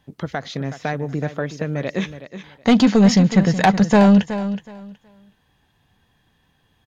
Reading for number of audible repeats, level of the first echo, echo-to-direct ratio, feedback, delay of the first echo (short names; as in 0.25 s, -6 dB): 2, -12.0 dB, -12.0 dB, 20%, 0.371 s